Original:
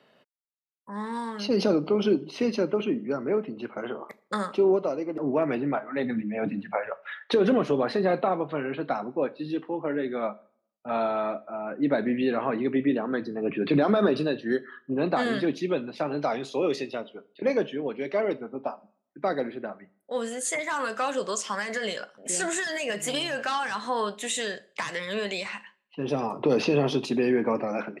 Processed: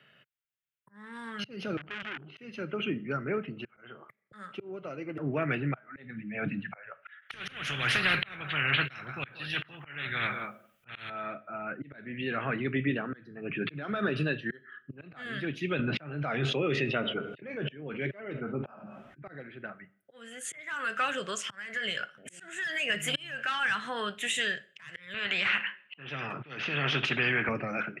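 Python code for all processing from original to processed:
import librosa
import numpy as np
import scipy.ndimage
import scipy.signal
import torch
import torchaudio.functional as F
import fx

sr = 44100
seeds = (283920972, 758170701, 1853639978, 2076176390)

y = fx.chain(x, sr, fx.level_steps(step_db=15),
    fx.air_absorb(metres=350.0),
    fx.transformer_sat(knee_hz=2200.0), at=(1.77, 2.37))
y = fx.chain(y, sr, fx.echo_single(ms=184, db=-21.0),
    fx.spectral_comp(ratio=4.0), at=(7.21, 11.1))
y = fx.chain(y, sr, fx.spacing_loss(db_at_10k=22),
    fx.doubler(ms=13.0, db=-13),
    fx.env_flatten(amount_pct=70), at=(15.79, 19.41))
y = fx.chain(y, sr, fx.bandpass_edges(low_hz=220.0, high_hz=2600.0),
    fx.spectral_comp(ratio=2.0), at=(25.14, 27.49))
y = fx.band_shelf(y, sr, hz=2100.0, db=14.5, octaves=1.7)
y = fx.auto_swell(y, sr, attack_ms=525.0)
y = fx.graphic_eq(y, sr, hz=(125, 250, 500, 1000, 2000, 4000, 8000), db=(9, -7, -5, -9, -6, -9, -4))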